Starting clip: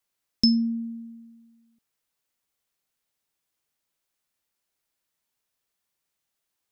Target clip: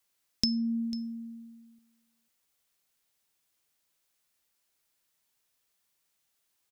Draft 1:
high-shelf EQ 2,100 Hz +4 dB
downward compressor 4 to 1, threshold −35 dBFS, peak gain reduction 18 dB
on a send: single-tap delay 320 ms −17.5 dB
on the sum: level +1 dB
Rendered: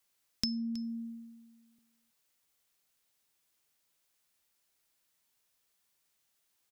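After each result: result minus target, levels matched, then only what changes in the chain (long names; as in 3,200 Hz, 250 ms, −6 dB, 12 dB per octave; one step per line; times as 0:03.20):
echo 176 ms early; downward compressor: peak gain reduction +5.5 dB
change: single-tap delay 496 ms −17.5 dB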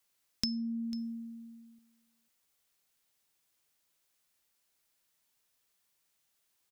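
downward compressor: peak gain reduction +5.5 dB
change: downward compressor 4 to 1, threshold −27.5 dBFS, peak gain reduction 12.5 dB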